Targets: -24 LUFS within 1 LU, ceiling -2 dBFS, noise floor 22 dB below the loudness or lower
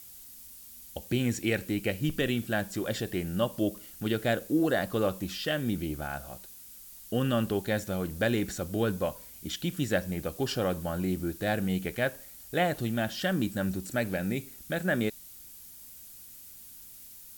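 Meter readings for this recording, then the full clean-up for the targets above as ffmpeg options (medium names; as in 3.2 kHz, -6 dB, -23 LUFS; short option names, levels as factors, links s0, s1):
noise floor -49 dBFS; noise floor target -53 dBFS; loudness -30.5 LUFS; peak level -12.5 dBFS; loudness target -24.0 LUFS
-> -af "afftdn=nr=6:nf=-49"
-af "volume=2.11"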